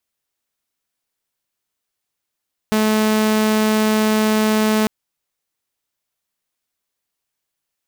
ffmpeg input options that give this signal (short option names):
-f lavfi -i "aevalsrc='0.266*(2*mod(216*t,1)-1)':d=2.15:s=44100"